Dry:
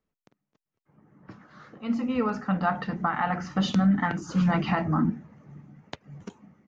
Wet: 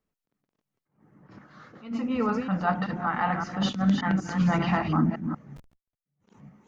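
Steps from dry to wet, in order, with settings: chunks repeated in reverse 191 ms, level -6 dB; 5.56–6.06 s: Schmitt trigger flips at -41.5 dBFS; attacks held to a fixed rise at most 150 dB/s

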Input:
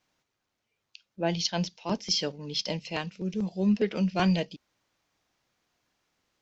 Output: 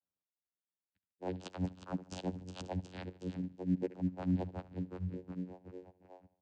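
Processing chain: expander on every frequency bin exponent 3; frequency-shifting echo 366 ms, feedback 56%, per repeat -150 Hz, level -16 dB; reverse; compression 6:1, threshold -43 dBFS, peak gain reduction 19.5 dB; reverse; feedback delay 74 ms, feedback 52%, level -18.5 dB; in parallel at -4 dB: sample-and-hold 17×; on the sum: vocoder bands 8, saw 91.3 Hz; trim +6.5 dB

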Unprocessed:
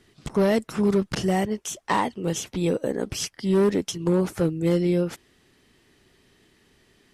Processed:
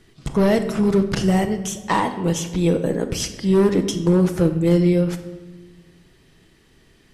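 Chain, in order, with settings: bass shelf 98 Hz +8.5 dB; simulated room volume 770 m³, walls mixed, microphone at 0.66 m; trim +2.5 dB

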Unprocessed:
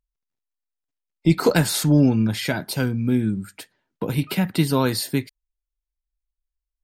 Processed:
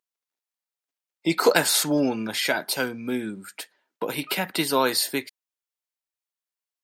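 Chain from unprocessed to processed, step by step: high-pass 460 Hz 12 dB/octave; trim +3 dB

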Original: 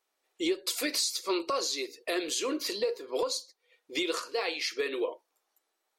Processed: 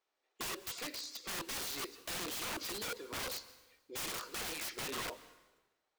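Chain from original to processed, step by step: 0.75–1.28 s: compression 10:1, threshold -33 dBFS, peak gain reduction 8.5 dB; boxcar filter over 4 samples; integer overflow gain 31 dB; plate-style reverb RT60 1.2 s, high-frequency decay 0.9×, pre-delay 115 ms, DRR 17 dB; trim -4 dB

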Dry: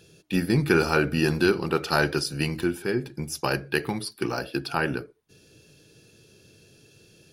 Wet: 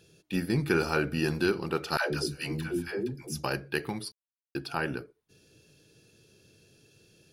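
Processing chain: 1.97–3.44 s: phase dispersion lows, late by 148 ms, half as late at 420 Hz; 4.12–4.55 s: mute; trim -5.5 dB

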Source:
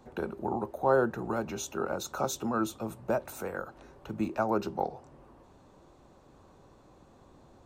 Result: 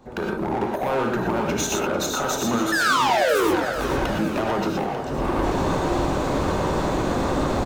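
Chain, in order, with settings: recorder AGC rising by 77 dB/s; peaking EQ 11 kHz -4 dB 1.4 oct; in parallel at +1 dB: peak limiter -18.5 dBFS, peak gain reduction 11 dB; on the sum: painted sound fall, 2.72–3.51 s, 300–1800 Hz -11 dBFS; hard clipper -19 dBFS, distortion -5 dB; on a send: frequency-shifting echo 446 ms, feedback 56%, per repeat +31 Hz, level -10 dB; on the sum: gated-style reverb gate 140 ms rising, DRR 0.5 dB; trim -2.5 dB

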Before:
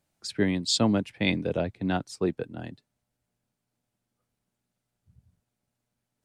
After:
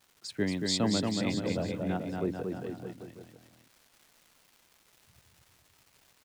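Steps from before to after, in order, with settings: 1.09–2.65 s: low-pass 1.3 kHz 6 dB/octave; crackle 430 per s -44 dBFS; bouncing-ball echo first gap 230 ms, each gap 0.9×, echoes 5; trim -5.5 dB

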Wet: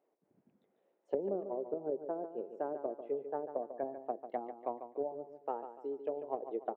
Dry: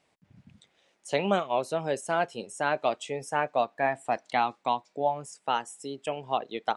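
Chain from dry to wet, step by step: ladder band-pass 460 Hz, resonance 45%; low-pass that closes with the level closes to 400 Hz, closed at -35.5 dBFS; wow and flutter 17 cents; on a send: feedback delay 145 ms, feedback 38%, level -10 dB; on the sum: trim +5.5 dB

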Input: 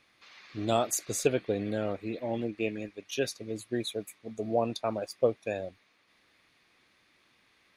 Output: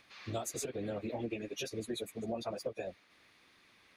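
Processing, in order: compression 6:1, threshold -36 dBFS, peak gain reduction 16 dB; plain phase-vocoder stretch 0.51×; trim +5 dB

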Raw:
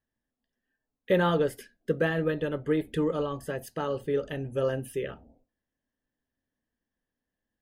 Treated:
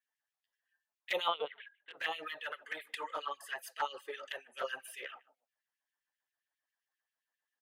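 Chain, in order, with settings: bass shelf 190 Hz -11.5 dB; speakerphone echo 150 ms, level -26 dB; 1.28–1.97 s: LPC vocoder at 8 kHz pitch kept; LFO high-pass sine 7.5 Hz 790–2700 Hz; touch-sensitive flanger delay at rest 10.2 ms, full sweep at -28.5 dBFS

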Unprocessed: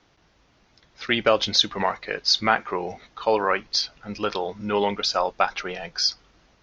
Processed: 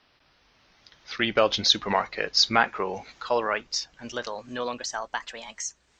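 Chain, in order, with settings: gliding tape speed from 79% -> 142%; Doppler pass-by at 2.17 s, 25 m/s, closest 25 m; tape noise reduction on one side only encoder only

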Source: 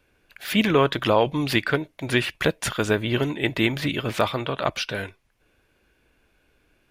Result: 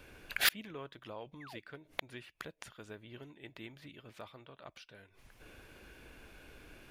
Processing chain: painted sound fall, 1.40–1.60 s, 380–2300 Hz -25 dBFS; inverted gate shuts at -22 dBFS, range -36 dB; trim +9 dB

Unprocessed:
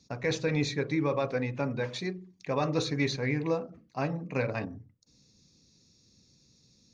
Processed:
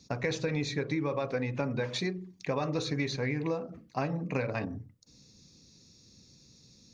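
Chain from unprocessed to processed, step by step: compression, threshold -33 dBFS, peak gain reduction 10 dB; trim +5 dB

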